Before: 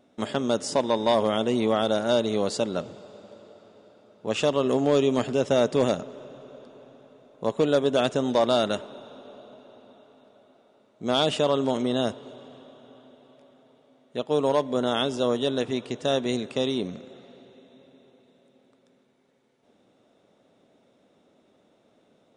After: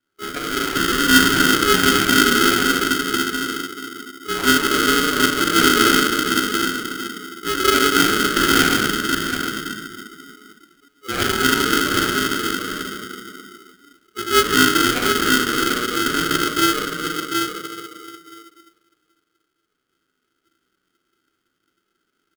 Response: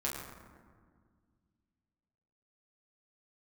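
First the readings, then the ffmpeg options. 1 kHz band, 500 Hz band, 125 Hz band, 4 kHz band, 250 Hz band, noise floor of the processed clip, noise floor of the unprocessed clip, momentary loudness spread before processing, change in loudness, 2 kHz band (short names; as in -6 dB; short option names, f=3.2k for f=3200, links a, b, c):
+11.5 dB, -0.5 dB, +3.5 dB, +13.5 dB, +7.5 dB, -74 dBFS, -64 dBFS, 13 LU, +8.0 dB, +20.5 dB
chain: -filter_complex "[0:a]aecho=1:1:730:0.447,flanger=delay=3.6:depth=3.2:regen=-52:speed=0.67:shape=triangular,highpass=f=480:t=q:w=4.9,equalizer=f=6.1k:w=0.4:g=7.5[a];[1:a]atrim=start_sample=2205,asetrate=23814,aresample=44100[b];[a][b]afir=irnorm=-1:irlink=0,acrusher=samples=15:mix=1:aa=0.000001,afftdn=nr=16:nf=-25,equalizer=f=1.6k:w=0.91:g=10,aeval=exprs='val(0)*sgn(sin(2*PI*850*n/s))':c=same,volume=-9.5dB"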